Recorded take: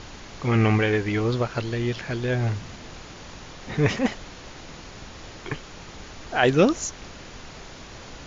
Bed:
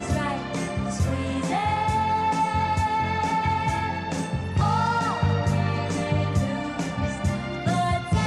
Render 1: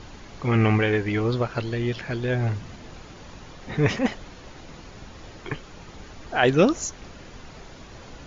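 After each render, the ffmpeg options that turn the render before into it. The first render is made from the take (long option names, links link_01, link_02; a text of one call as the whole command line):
ffmpeg -i in.wav -af "afftdn=noise_reduction=6:noise_floor=-43" out.wav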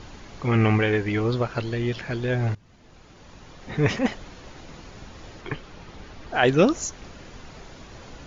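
ffmpeg -i in.wav -filter_complex "[0:a]asettb=1/sr,asplit=3[link_01][link_02][link_03];[link_01]atrim=end=5.414[link_04];[link_02]atrim=start=5.41:end=6.34,asetpts=PTS-STARTPTS,afade=type=in:duration=0.004:curve=qsin,afade=type=out:start_time=0.926:duration=0.004:curve=qsin,lowpass=5600[link_05];[link_03]atrim=start=6.336[link_06];[link_04][link_05]acrossfade=duration=0.004:curve1=hsin:curve2=qsin[link_07];[link_07][link_06]acrossfade=duration=0.004:curve1=qsin:curve2=hsin,asplit=2[link_08][link_09];[link_08]atrim=end=2.55,asetpts=PTS-STARTPTS,afade=type=out:start_time=2.546:duration=0.004:curve=hsin:silence=0.0891251[link_10];[link_09]atrim=start=2.55,asetpts=PTS-STARTPTS,afade=type=in:duration=1.35:silence=0.0891251[link_11];[link_10][link_11]concat=n=2:v=0:a=1" out.wav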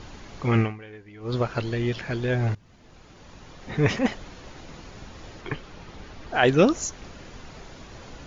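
ffmpeg -i in.wav -filter_complex "[0:a]asplit=3[link_01][link_02][link_03];[link_01]atrim=end=0.77,asetpts=PTS-STARTPTS,afade=type=out:start_time=0.59:duration=0.18:curve=qua:silence=0.0891251[link_04];[link_02]atrim=start=0.77:end=1.17,asetpts=PTS-STARTPTS,volume=-21dB[link_05];[link_03]atrim=start=1.17,asetpts=PTS-STARTPTS,afade=type=in:duration=0.18:curve=qua:silence=0.0891251[link_06];[link_04][link_05][link_06]concat=n=3:v=0:a=1" out.wav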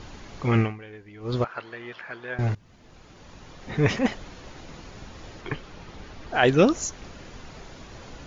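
ffmpeg -i in.wav -filter_complex "[0:a]asettb=1/sr,asplit=3[link_01][link_02][link_03];[link_01]atrim=end=1.444[link_04];[link_02]atrim=start=1.44:end=2.39,asetpts=PTS-STARTPTS,afade=type=in:duration=0.004:curve=qsin,afade=type=out:start_time=0.946:duration=0.004:curve=qsin,bandpass=frequency=1300:width_type=q:width=1.3[link_05];[link_03]atrim=start=2.386[link_06];[link_04][link_05]acrossfade=duration=0.004:curve1=hsin:curve2=qsin[link_07];[link_07][link_06]acrossfade=duration=0.004:curve1=qsin:curve2=hsin" out.wav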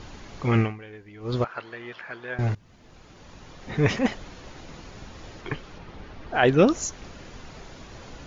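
ffmpeg -i in.wav -filter_complex "[0:a]asettb=1/sr,asplit=3[link_01][link_02][link_03];[link_01]atrim=end=5.784[link_04];[link_02]atrim=start=5.78:end=6.68,asetpts=PTS-STARTPTS,afade=type=in:duration=0.004:curve=qsin,afade=type=out:start_time=0.896:duration=0.004:curve=qsin,aemphasis=mode=reproduction:type=50fm[link_05];[link_03]atrim=start=6.676[link_06];[link_04][link_05]acrossfade=duration=0.004:curve1=hsin:curve2=qsin[link_07];[link_07][link_06]acrossfade=duration=0.004:curve1=qsin:curve2=hsin" out.wav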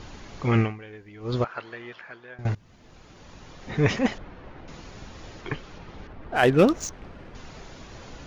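ffmpeg -i in.wav -filter_complex "[0:a]asettb=1/sr,asplit=3[link_01][link_02][link_03];[link_01]atrim=end=4.184[link_04];[link_02]atrim=start=4.18:end=4.68,asetpts=PTS-STARTPTS,afade=type=in:duration=0.004:curve=qsin,afade=type=out:start_time=0.496:duration=0.004:curve=qsin,lowpass=2000[link_05];[link_03]atrim=start=4.676[link_06];[link_04][link_05]acrossfade=duration=0.004:curve1=hsin:curve2=qsin[link_07];[link_07][link_06]acrossfade=duration=0.004:curve1=qsin:curve2=hsin,asettb=1/sr,asplit=3[link_08][link_09][link_10];[link_08]atrim=end=6.074[link_11];[link_09]atrim=start=6.07:end=7.35,asetpts=PTS-STARTPTS,afade=type=in:duration=0.004:curve=qsin,afade=type=out:start_time=1.276:duration=0.004:curve=qsin,adynamicsmooth=sensitivity=7:basefreq=2000[link_12];[link_10]atrim=start=7.346[link_13];[link_11][link_12]acrossfade=duration=0.004:curve1=hsin:curve2=qsin[link_14];[link_14][link_13]acrossfade=duration=0.004:curve1=qsin:curve2=hsin,asplit=2[link_15][link_16];[link_15]atrim=end=2.45,asetpts=PTS-STARTPTS,afade=type=out:start_time=1.73:duration=0.72:silence=0.149624[link_17];[link_16]atrim=start=2.45,asetpts=PTS-STARTPTS,afade=type=in:duration=0.004:curve=hsin:silence=0.149624[link_18];[link_17][link_18]concat=n=2:v=0:a=1" out.wav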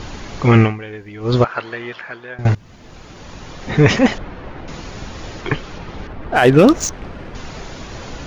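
ffmpeg -i in.wav -af "alimiter=level_in=11.5dB:limit=-1dB:release=50:level=0:latency=1" out.wav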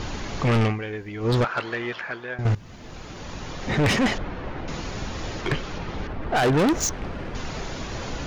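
ffmpeg -i in.wav -af "asoftclip=type=tanh:threshold=-17dB" out.wav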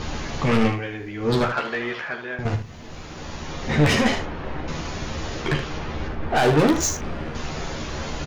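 ffmpeg -i in.wav -filter_complex "[0:a]asplit=2[link_01][link_02];[link_02]adelay=40,volume=-12dB[link_03];[link_01][link_03]amix=inputs=2:normalize=0,aecho=1:1:13|76:0.631|0.398" out.wav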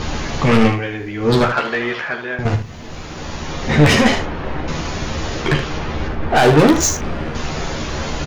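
ffmpeg -i in.wav -af "volume=6.5dB" out.wav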